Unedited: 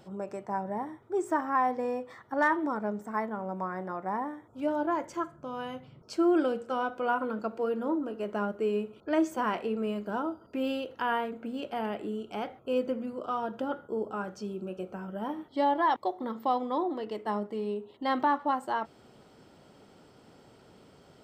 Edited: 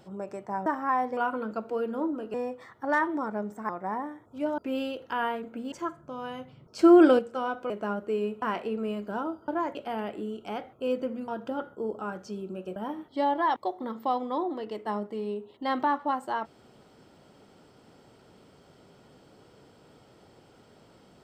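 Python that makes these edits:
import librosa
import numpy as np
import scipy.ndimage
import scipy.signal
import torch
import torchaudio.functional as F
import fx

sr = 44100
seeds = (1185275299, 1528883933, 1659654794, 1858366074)

y = fx.edit(x, sr, fx.cut(start_s=0.66, length_s=0.66),
    fx.cut(start_s=3.18, length_s=0.73),
    fx.swap(start_s=4.8, length_s=0.27, other_s=10.47, other_length_s=1.14),
    fx.clip_gain(start_s=6.14, length_s=0.4, db=8.5),
    fx.move(start_s=7.05, length_s=1.17, to_s=1.83),
    fx.cut(start_s=8.94, length_s=0.47),
    fx.cut(start_s=13.14, length_s=0.26),
    fx.cut(start_s=14.88, length_s=0.28), tone=tone)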